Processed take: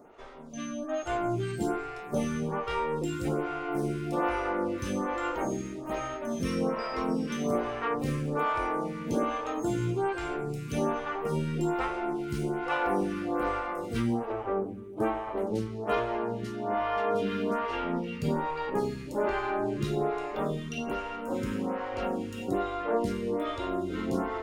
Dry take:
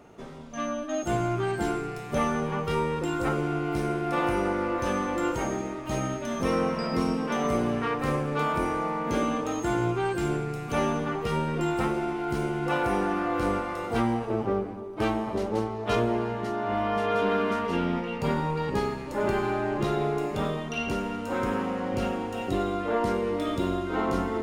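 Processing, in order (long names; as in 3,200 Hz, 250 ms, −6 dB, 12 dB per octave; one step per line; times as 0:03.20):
0:14.32–0:15.47: parametric band 4,800 Hz −10 dB 0.88 octaves
phaser with staggered stages 1.2 Hz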